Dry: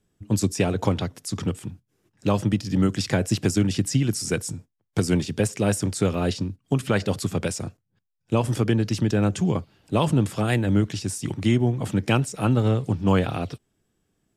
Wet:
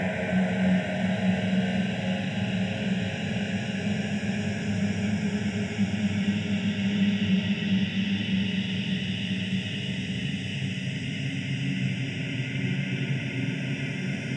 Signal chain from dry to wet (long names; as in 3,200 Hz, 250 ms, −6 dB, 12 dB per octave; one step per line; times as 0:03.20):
reverb reduction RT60 1.5 s
transient designer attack −7 dB, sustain +7 dB
loudspeaker in its box 170–4,200 Hz, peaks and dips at 190 Hz +6 dB, 490 Hz −9 dB, 900 Hz −3 dB
phaser with its sweep stopped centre 1,200 Hz, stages 6
spring reverb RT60 1.4 s, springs 48 ms, chirp 65 ms, DRR 3 dB
extreme stretch with random phases 16×, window 0.50 s, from 0:03.22
level +3 dB